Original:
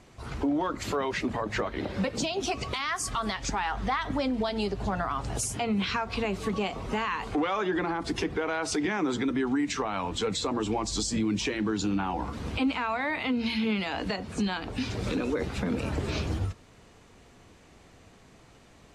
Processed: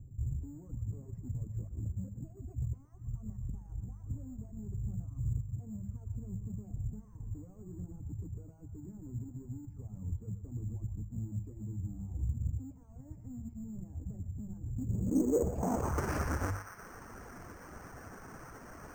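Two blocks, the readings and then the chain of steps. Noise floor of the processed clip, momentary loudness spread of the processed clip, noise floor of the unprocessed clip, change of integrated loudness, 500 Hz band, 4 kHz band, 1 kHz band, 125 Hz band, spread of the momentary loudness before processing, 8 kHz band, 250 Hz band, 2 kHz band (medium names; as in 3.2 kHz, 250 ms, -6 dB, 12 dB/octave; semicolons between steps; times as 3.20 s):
-53 dBFS, 15 LU, -55 dBFS, -10.0 dB, -11.0 dB, under -25 dB, -15.5 dB, -0.5 dB, 4 LU, -16.0 dB, -11.0 dB, -18.0 dB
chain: square wave that keeps the level; reverb removal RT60 0.79 s; hum notches 50/100/150/200 Hz; reverse; compression 6:1, threshold -34 dBFS, peak gain reduction 12.5 dB; reverse; low-pass sweep 110 Hz -> 1.5 kHz, 14.64–16.01 s; band-passed feedback delay 119 ms, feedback 69%, band-pass 1.6 kHz, level -5.5 dB; careless resampling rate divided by 6×, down filtered, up hold; loudspeaker Doppler distortion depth 0.12 ms; trim +2 dB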